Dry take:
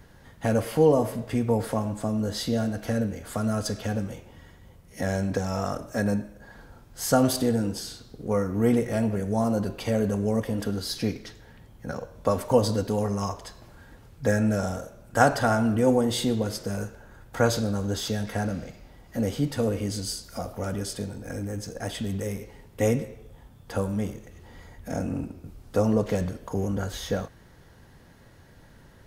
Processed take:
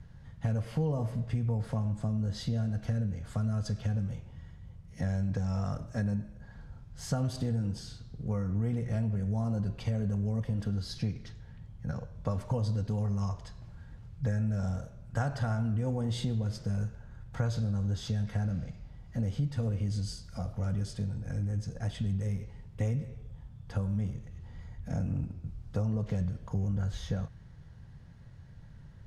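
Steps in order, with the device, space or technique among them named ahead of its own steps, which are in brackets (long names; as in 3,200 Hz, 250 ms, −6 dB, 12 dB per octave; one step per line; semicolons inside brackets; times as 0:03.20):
jukebox (low-pass filter 7,000 Hz 12 dB per octave; low shelf with overshoot 210 Hz +11.5 dB, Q 1.5; downward compressor 5 to 1, threshold −18 dBFS, peak gain reduction 8.5 dB)
level −9 dB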